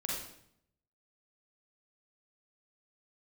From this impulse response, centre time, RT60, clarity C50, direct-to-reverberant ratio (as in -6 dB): 60 ms, 0.70 s, -0.5 dB, -4.0 dB